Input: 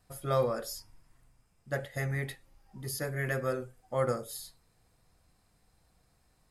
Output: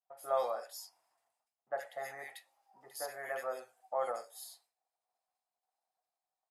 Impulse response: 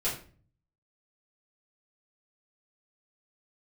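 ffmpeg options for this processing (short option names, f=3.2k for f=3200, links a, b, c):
-filter_complex "[0:a]agate=range=-33dB:threshold=-56dB:ratio=3:detection=peak,highpass=f=740:t=q:w=4.4,acrossover=split=1800[a][b];[b]adelay=70[c];[a][c]amix=inputs=2:normalize=0,volume=-6.5dB"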